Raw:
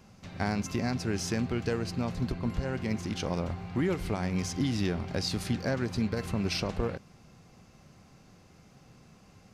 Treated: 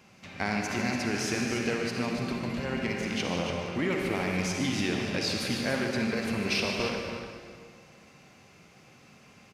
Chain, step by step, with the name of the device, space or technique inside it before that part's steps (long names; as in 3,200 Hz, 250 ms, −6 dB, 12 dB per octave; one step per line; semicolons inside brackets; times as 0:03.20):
stadium PA (high-pass filter 220 Hz 6 dB per octave; parametric band 2,400 Hz +7 dB 0.92 octaves; loudspeakers that aren't time-aligned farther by 52 metres −11 dB, 99 metres −8 dB; convolution reverb RT60 1.8 s, pre-delay 44 ms, DRR 2 dB)